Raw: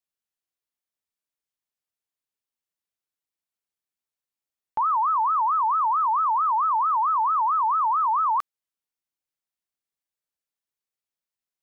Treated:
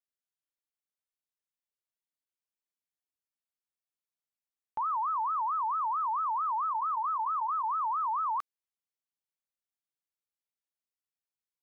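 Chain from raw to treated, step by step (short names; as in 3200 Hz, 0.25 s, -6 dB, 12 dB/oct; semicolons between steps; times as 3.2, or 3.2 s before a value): 6.66–7.69 notch 970 Hz, Q 22; gain -8.5 dB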